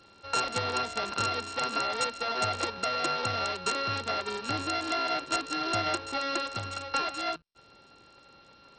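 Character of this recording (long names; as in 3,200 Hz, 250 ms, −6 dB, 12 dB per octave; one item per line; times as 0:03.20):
a buzz of ramps at a fixed pitch in blocks of 32 samples
SBC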